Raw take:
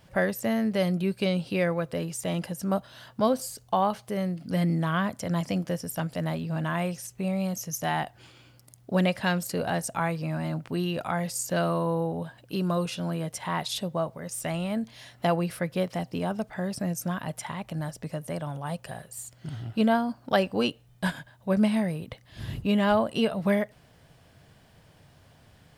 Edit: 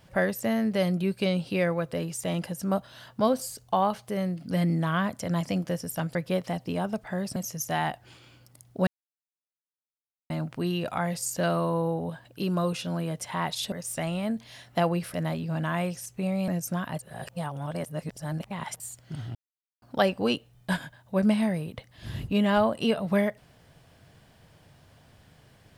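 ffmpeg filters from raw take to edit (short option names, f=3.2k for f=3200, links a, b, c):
-filter_complex "[0:a]asplit=12[a][b][c][d][e][f][g][h][i][j][k][l];[a]atrim=end=6.152[m];[b]atrim=start=15.608:end=16.822[n];[c]atrim=start=7.488:end=9,asetpts=PTS-STARTPTS,afade=t=out:st=1.508:d=0.004:c=hsin[o];[d]atrim=start=9:end=10.43,asetpts=PTS-STARTPTS,volume=0[p];[e]atrim=start=10.43:end=13.852,asetpts=PTS-STARTPTS,afade=t=in:d=0.004:c=hsin[q];[f]atrim=start=14.188:end=15.612[r];[g]atrim=start=6.148:end=7.492[s];[h]atrim=start=16.818:end=17.332[t];[i]atrim=start=17.328:end=19.142,asetpts=PTS-STARTPTS,areverse[u];[j]atrim=start=19.138:end=19.69,asetpts=PTS-STARTPTS,afade=t=out:st=0.548:d=0.004:c=hsin[v];[k]atrim=start=19.69:end=20.16,asetpts=PTS-STARTPTS,volume=0[w];[l]atrim=start=20.16,asetpts=PTS-STARTPTS,afade=t=in:d=0.004:c=hsin[x];[m][n]acrossfade=d=0.004:c1=hsin:c2=hsin[y];[o][p][q]concat=n=3:v=0:a=1[z];[y][z]acrossfade=d=0.004:c1=hsin:c2=hsin[aa];[aa][r]acrossfade=d=0.004:c1=hsin:c2=hsin[ab];[ab][s]acrossfade=d=0.004:c1=hsin:c2=hsin[ac];[ac][t]acrossfade=d=0.004:c1=hsin:c2=hsin[ad];[ad][u]acrossfade=d=0.004:c1=hsin:c2=hsin[ae];[v][w][x]concat=n=3:v=0:a=1[af];[ae][af]acrossfade=d=0.004:c1=hsin:c2=hsin"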